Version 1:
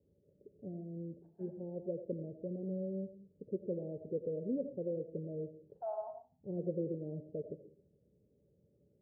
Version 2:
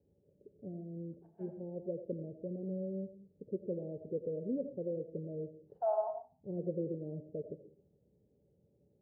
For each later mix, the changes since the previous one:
second voice +7.5 dB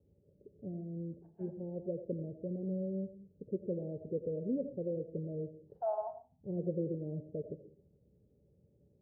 first voice: add low shelf 120 Hz +9.5 dB; second voice: send -7.5 dB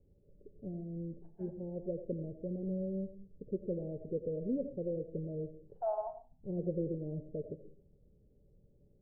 master: remove HPF 67 Hz 24 dB/oct

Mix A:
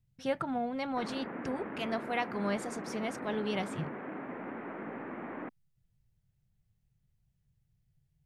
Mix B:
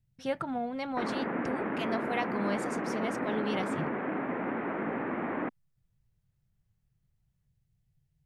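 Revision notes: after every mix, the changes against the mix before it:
background +8.0 dB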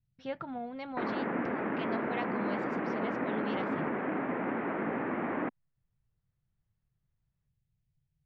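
speech -5.5 dB; master: add LPF 4400 Hz 24 dB/oct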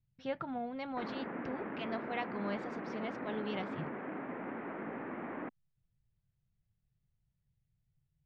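background -8.5 dB

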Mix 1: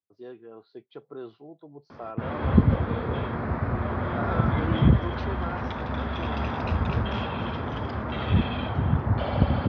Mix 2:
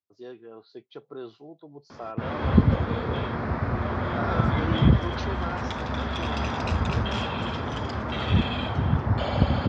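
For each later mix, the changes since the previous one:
master: remove air absorption 240 m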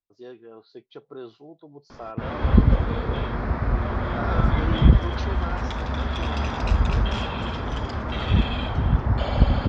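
master: remove HPF 77 Hz 24 dB/oct

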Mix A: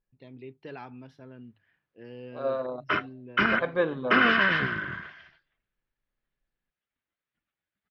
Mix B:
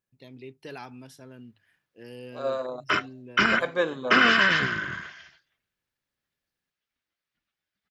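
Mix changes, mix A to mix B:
second voice: add HPF 230 Hz 6 dB/oct; master: remove air absorption 300 m

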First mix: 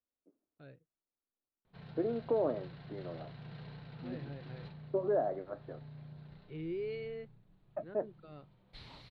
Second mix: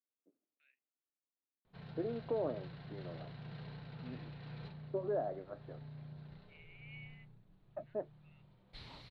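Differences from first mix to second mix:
first voice: add Butterworth band-pass 2400 Hz, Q 2.6; second voice -5.0 dB

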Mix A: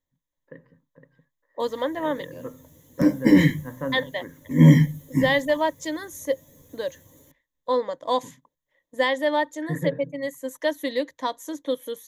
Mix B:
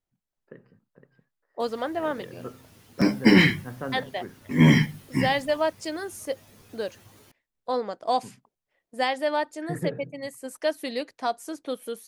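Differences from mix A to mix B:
background: add band shelf 2100 Hz +10 dB 2.9 oct; master: remove ripple EQ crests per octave 1.1, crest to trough 13 dB

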